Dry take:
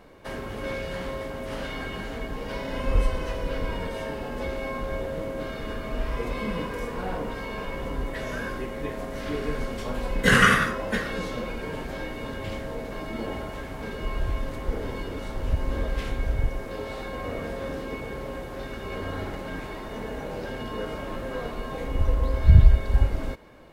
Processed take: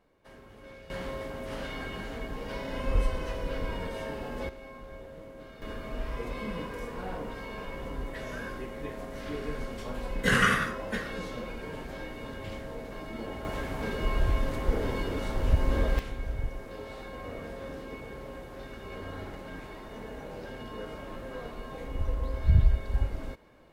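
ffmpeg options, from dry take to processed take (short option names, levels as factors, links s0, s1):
-af "asetnsamples=n=441:p=0,asendcmd='0.9 volume volume -4dB;4.49 volume volume -14.5dB;5.62 volume volume -6dB;13.45 volume volume 1.5dB;15.99 volume volume -7.5dB',volume=0.141"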